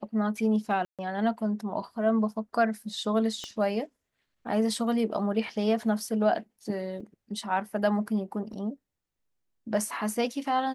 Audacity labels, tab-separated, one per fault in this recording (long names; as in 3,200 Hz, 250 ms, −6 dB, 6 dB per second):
0.850000	0.990000	drop-out 137 ms
3.440000	3.440000	click −22 dBFS
7.000000	7.000000	drop-out 5 ms
8.530000	8.530000	drop-out 2.7 ms